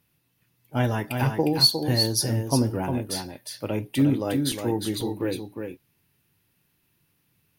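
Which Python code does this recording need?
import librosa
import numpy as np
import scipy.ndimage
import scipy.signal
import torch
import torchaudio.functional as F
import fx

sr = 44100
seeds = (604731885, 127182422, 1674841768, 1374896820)

y = fx.fix_interpolate(x, sr, at_s=(4.52, 5.01), length_ms=2.4)
y = fx.fix_echo_inverse(y, sr, delay_ms=358, level_db=-6.0)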